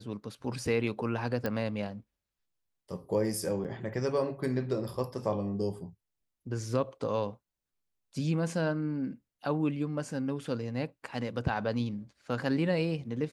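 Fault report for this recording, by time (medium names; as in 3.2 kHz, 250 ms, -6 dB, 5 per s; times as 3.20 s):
1.46 s: pop -18 dBFS
3.64–3.65 s: dropout 7.9 ms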